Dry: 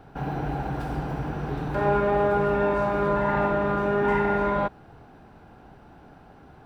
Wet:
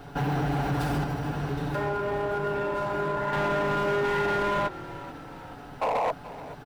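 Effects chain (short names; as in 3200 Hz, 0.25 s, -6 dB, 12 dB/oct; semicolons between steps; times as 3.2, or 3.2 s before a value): high shelf 2400 Hz +9.5 dB; notch 2400 Hz, Q 25; comb 7 ms, depth 63%; compressor 6:1, threshold -24 dBFS, peak gain reduction 9 dB; 1.04–3.33 flange 1.3 Hz, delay 7.6 ms, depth 8.2 ms, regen -82%; 5.81–6.12 painted sound noise 430–1100 Hz -26 dBFS; hard clip -25.5 dBFS, distortion -13 dB; frequency-shifting echo 0.43 s, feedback 57%, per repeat -39 Hz, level -16 dB; gain +3 dB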